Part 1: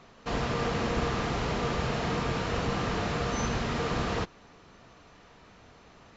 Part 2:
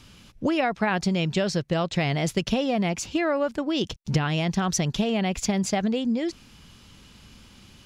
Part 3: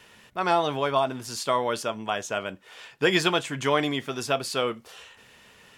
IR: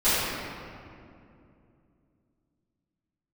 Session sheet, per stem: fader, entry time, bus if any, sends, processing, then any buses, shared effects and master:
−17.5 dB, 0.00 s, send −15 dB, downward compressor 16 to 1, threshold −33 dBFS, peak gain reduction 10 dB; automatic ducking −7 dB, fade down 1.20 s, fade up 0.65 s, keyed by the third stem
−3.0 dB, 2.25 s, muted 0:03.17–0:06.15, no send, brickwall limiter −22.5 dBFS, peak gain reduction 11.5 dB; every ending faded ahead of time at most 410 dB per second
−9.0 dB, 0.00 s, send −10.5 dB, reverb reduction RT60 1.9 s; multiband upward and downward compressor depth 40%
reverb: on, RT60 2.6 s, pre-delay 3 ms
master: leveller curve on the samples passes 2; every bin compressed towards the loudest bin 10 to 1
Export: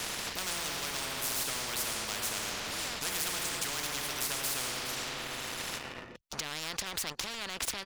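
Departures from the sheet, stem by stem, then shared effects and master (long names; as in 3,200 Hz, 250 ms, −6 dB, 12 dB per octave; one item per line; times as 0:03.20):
stem 2 −3.0 dB → −14.0 dB
reverb return −7.5 dB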